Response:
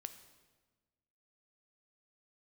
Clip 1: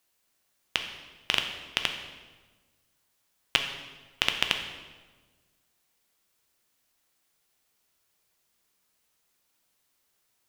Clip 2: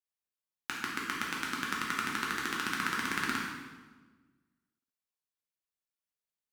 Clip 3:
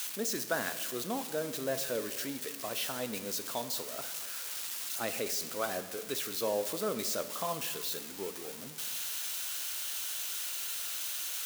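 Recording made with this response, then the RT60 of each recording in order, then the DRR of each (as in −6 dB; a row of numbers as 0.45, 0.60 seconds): 3; 1.3, 1.3, 1.3 seconds; 4.5, −3.5, 9.5 decibels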